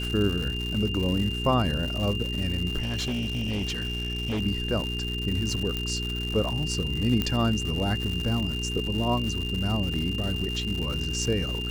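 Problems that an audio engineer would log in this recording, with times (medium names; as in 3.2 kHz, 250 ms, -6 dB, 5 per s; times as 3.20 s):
crackle 220 per s -30 dBFS
hum 60 Hz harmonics 7 -32 dBFS
whine 2.8 kHz -32 dBFS
2.80–4.41 s: clipped -25 dBFS
5.77 s: pop -15 dBFS
7.22 s: pop -12 dBFS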